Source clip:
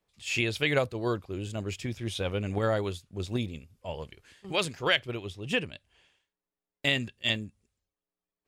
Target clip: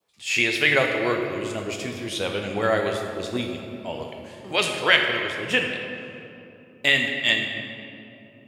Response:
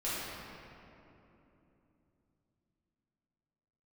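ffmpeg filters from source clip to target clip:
-filter_complex "[0:a]asplit=2[s0][s1];[1:a]atrim=start_sample=2205,highshelf=f=6300:g=6,adelay=12[s2];[s1][s2]afir=irnorm=-1:irlink=0,volume=0.355[s3];[s0][s3]amix=inputs=2:normalize=0,adynamicequalizer=threshold=0.00708:dfrequency=1900:dqfactor=2.8:tfrequency=1900:tqfactor=2.8:attack=5:release=100:ratio=0.375:range=3:mode=boostabove:tftype=bell,highpass=f=350:p=1,volume=1.88"

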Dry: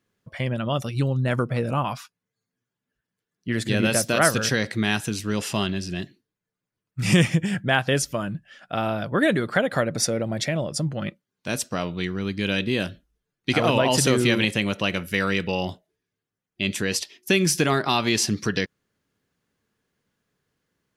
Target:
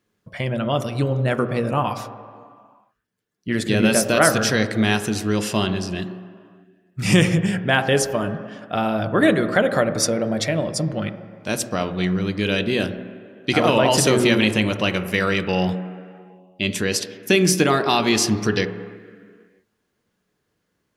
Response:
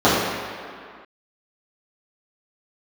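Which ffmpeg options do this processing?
-filter_complex "[0:a]asplit=2[s0][s1];[1:a]atrim=start_sample=2205,lowpass=2800[s2];[s1][s2]afir=irnorm=-1:irlink=0,volume=0.02[s3];[s0][s3]amix=inputs=2:normalize=0,volume=1.33"

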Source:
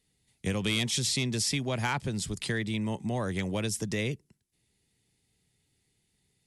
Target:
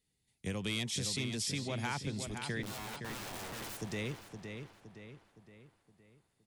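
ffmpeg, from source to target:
-filter_complex "[0:a]asettb=1/sr,asplit=3[s0][s1][s2];[s0]atrim=end=2.634[s3];[s1]atrim=start=2.63:end=3.8,asetpts=PTS-STARTPTS,afade=t=in:d=0.004:c=qsin,afade=t=out:st=1.166:d=0.004:c=qsin,aeval=exprs='(mod(42.2*val(0)+1,2)-1)/42.2':c=same[s4];[s2]atrim=start=3.796[s5];[s3][s4]acrossfade=d=0.004:c1=hsin:c2=qsin[s6];[s6][s5]acrossfade=d=0.004:c1=qsin:c2=hsin,asplit=2[s7][s8];[s8]adelay=516,lowpass=f=4300:p=1,volume=0.473,asplit=2[s9][s10];[s10]adelay=516,lowpass=f=4300:p=1,volume=0.48,asplit=2[s11][s12];[s12]adelay=516,lowpass=f=4300:p=1,volume=0.48,asplit=2[s13][s14];[s14]adelay=516,lowpass=f=4300:p=1,volume=0.48,asplit=2[s15][s16];[s16]adelay=516,lowpass=f=4300:p=1,volume=0.48,asplit=2[s17][s18];[s18]adelay=516,lowpass=f=4300:p=1,volume=0.48[s19];[s7][s9][s11][s13][s15][s17][s19]amix=inputs=7:normalize=0,volume=0.422"

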